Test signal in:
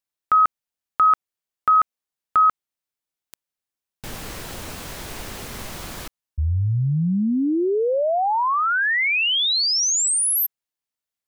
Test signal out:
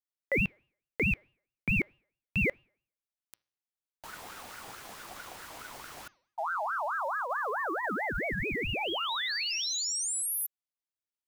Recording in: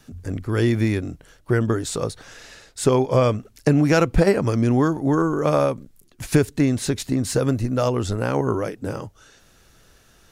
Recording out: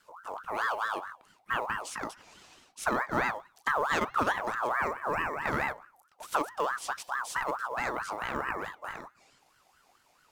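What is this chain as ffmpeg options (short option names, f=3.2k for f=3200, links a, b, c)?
-af "bandreject=f=222.7:t=h:w=4,bandreject=f=445.4:t=h:w=4,bandreject=f=668.1:t=h:w=4,bandreject=f=890.8:t=h:w=4,bandreject=f=1.1135k:t=h:w=4,bandreject=f=1.3362k:t=h:w=4,bandreject=f=1.5589k:t=h:w=4,bandreject=f=1.7816k:t=h:w=4,bandreject=f=2.0043k:t=h:w=4,bandreject=f=2.227k:t=h:w=4,bandreject=f=2.4497k:t=h:w=4,bandreject=f=2.6724k:t=h:w=4,bandreject=f=2.8951k:t=h:w=4,bandreject=f=3.1178k:t=h:w=4,bandreject=f=3.3405k:t=h:w=4,bandreject=f=3.5632k:t=h:w=4,bandreject=f=3.7859k:t=h:w=4,bandreject=f=4.0086k:t=h:w=4,bandreject=f=4.2313k:t=h:w=4,bandreject=f=4.454k:t=h:w=4,bandreject=f=4.6767k:t=h:w=4,bandreject=f=4.8994k:t=h:w=4,bandreject=f=5.1221k:t=h:w=4,acrusher=bits=8:mode=log:mix=0:aa=0.000001,aeval=exprs='val(0)*sin(2*PI*1100*n/s+1100*0.35/4.6*sin(2*PI*4.6*n/s))':c=same,volume=-9dB"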